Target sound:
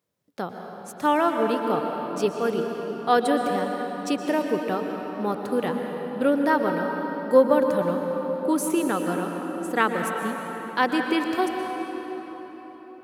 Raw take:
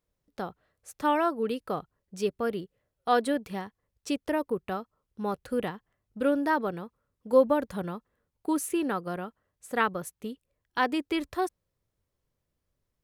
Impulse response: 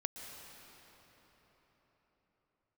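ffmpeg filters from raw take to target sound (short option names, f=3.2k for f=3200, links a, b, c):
-filter_complex "[0:a]highpass=f=110:w=0.5412,highpass=f=110:w=1.3066[a];[1:a]atrim=start_sample=2205[b];[a][b]afir=irnorm=-1:irlink=0,volume=6dB"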